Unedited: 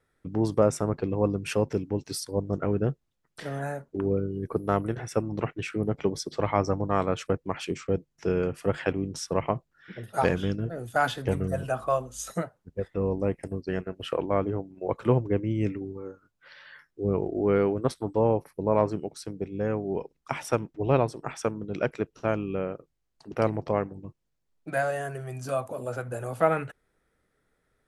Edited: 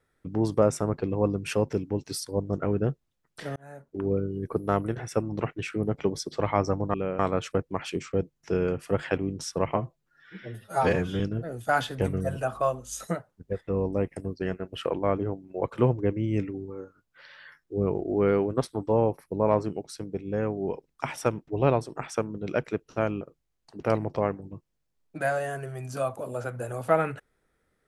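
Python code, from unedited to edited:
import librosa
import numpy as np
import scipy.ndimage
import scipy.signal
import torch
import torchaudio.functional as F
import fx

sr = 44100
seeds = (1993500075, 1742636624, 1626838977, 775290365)

y = fx.edit(x, sr, fx.fade_in_span(start_s=3.56, length_s=0.57),
    fx.stretch_span(start_s=9.51, length_s=0.96, factor=1.5),
    fx.move(start_s=22.48, length_s=0.25, to_s=6.94), tone=tone)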